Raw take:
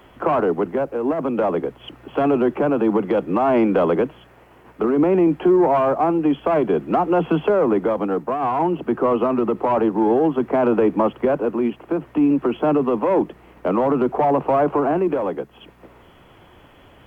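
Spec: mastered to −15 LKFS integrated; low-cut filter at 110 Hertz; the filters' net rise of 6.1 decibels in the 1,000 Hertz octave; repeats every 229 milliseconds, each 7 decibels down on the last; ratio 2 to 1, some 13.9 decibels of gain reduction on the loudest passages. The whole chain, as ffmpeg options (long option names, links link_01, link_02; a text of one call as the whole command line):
ffmpeg -i in.wav -af "highpass=110,equalizer=frequency=1000:width_type=o:gain=8,acompressor=threshold=-37dB:ratio=2,aecho=1:1:229|458|687|916|1145:0.447|0.201|0.0905|0.0407|0.0183,volume=14.5dB" out.wav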